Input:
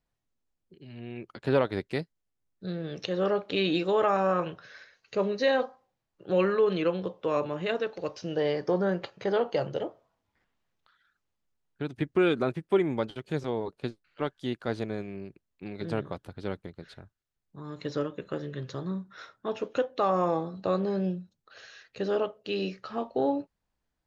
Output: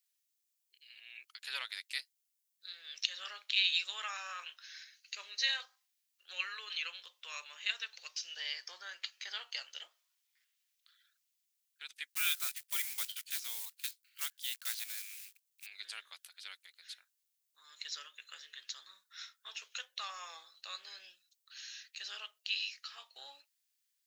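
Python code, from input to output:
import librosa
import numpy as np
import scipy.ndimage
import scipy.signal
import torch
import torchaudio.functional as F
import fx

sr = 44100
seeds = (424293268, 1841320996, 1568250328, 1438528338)

y = fx.block_float(x, sr, bits=5, at=(12.09, 15.65), fade=0.02)
y = scipy.signal.sosfilt(scipy.signal.cheby1(2, 1.0, 2200.0, 'highpass', fs=sr, output='sos'), y)
y = np.diff(y, prepend=0.0)
y = y * 10.0 ** (10.5 / 20.0)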